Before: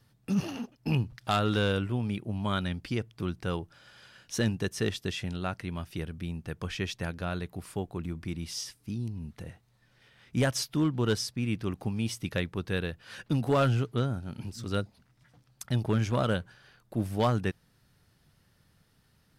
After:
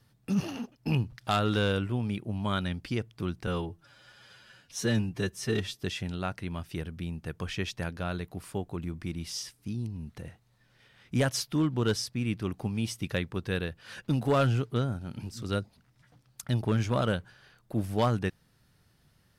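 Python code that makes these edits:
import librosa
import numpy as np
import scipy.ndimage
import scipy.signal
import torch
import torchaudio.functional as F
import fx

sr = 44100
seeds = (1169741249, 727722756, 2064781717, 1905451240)

y = fx.edit(x, sr, fx.stretch_span(start_s=3.47, length_s=1.57, factor=1.5), tone=tone)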